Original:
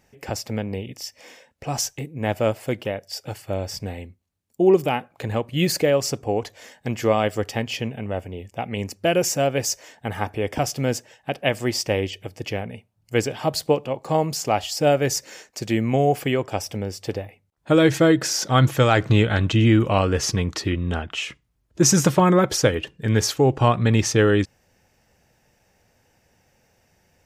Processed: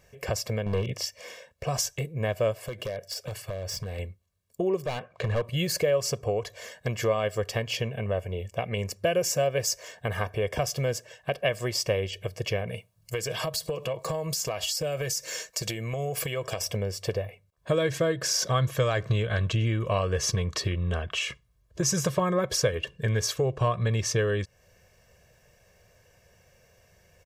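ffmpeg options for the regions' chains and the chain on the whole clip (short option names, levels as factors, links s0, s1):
-filter_complex "[0:a]asettb=1/sr,asplit=3[s0][s1][s2];[s0]atrim=end=0.664[s3];[s1]atrim=start=0.66:end=1.06,asetpts=PTS-STARTPTS,afade=t=in:d=0.004:c=qsin,afade=t=out:st=0.396:d=0.004:c=qsin,acontrast=85,lowpass=f=3600:p=1,asoftclip=type=hard:threshold=0.112[s4];[s2]atrim=start=1.056[s5];[s3][s4]acrossfade=d=0.004:c1=hsin:c2=qsin[s6];[s6][s5]acrossfade=d=0.004:c1=qsin:c2=hsin,asettb=1/sr,asplit=3[s7][s8][s9];[s7]atrim=end=2.614[s10];[s8]atrim=start=2.61:end=3.99,asetpts=PTS-STARTPTS,afade=t=in:d=0.004:c=qsin,afade=t=out:st=1.376:d=0.004:c=qsin,acompressor=threshold=0.0316:ratio=10:attack=3.2:release=140:knee=1:detection=peak,aeval=exprs='0.0422*(abs(mod(val(0)/0.0422+3,4)-2)-1)':c=same[s11];[s9]atrim=start=3.986[s12];[s10][s11]acrossfade=d=0.004:c1=hsin:c2=qsin[s13];[s13][s12]acrossfade=d=0.004:c1=qsin:c2=hsin,asettb=1/sr,asplit=3[s14][s15][s16];[s14]atrim=end=4.844[s17];[s15]atrim=start=4.84:end=5.44,asetpts=PTS-STARTPTS,afade=t=in:d=0.004:c=qsin,afade=t=out:st=0.596:d=0.004:c=qsin,lowpass=5800,asoftclip=type=hard:threshold=0.0841[s18];[s16]atrim=start=5.436[s19];[s17][s18]acrossfade=d=0.004:c1=hsin:c2=qsin[s20];[s20][s19]acrossfade=d=0.004:c1=qsin:c2=hsin,asettb=1/sr,asplit=3[s21][s22][s23];[s21]atrim=end=12.674[s24];[s22]atrim=start=12.67:end=16.61,asetpts=PTS-STARTPTS,afade=t=in:d=0.004:c=qsin,afade=t=out:st=3.936:d=0.004:c=qsin,highshelf=f=3400:g=8,aecho=1:1:6.2:0.33,atrim=end_sample=173754,acompressor=threshold=0.0447:ratio=10:attack=3.2:release=140:knee=1:detection=peak[s25];[s23]atrim=start=16.606[s26];[s24][s25]acrossfade=d=0.004:c1=hsin:c2=qsin[s27];[s27][s26]acrossfade=d=0.004:c1=qsin:c2=hsin,acompressor=threshold=0.0447:ratio=3,aecho=1:1:1.8:0.76"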